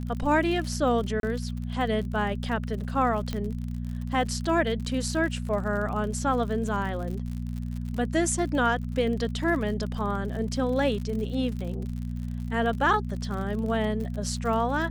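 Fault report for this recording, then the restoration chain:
surface crackle 59 per second −34 dBFS
mains hum 60 Hz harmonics 4 −32 dBFS
0:01.20–0:01.23: drop-out 32 ms
0:03.33: click −17 dBFS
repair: click removal
hum removal 60 Hz, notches 4
repair the gap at 0:01.20, 32 ms

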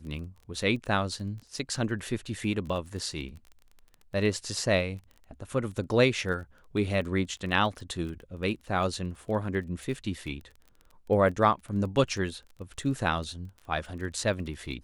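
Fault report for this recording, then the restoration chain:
surface crackle 20 per second −38 dBFS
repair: click removal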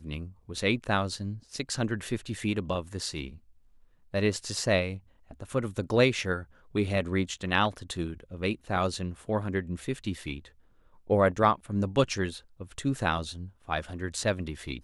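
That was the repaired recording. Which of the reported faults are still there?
none of them is left

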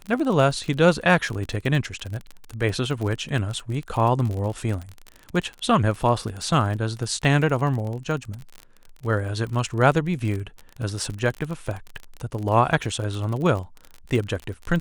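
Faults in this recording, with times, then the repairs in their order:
surface crackle 37 per second −28 dBFS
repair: click removal

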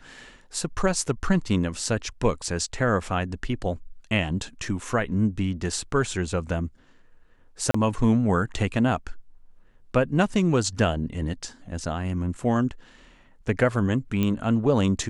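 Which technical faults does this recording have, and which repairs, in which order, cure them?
0:07.71–0:07.74: drop-out 34 ms
0:14.23: click −13 dBFS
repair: click removal
repair the gap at 0:07.71, 34 ms

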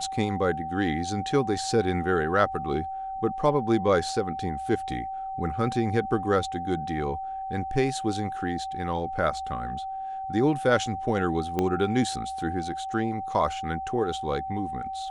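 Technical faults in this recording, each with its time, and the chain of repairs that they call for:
whistle 770 Hz −31 dBFS
0:11.59: click −13 dBFS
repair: click removal
notch filter 770 Hz, Q 30

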